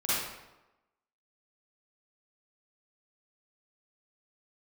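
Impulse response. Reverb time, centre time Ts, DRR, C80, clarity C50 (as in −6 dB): 1.0 s, 98 ms, −12.0 dB, 0.5 dB, −7.0 dB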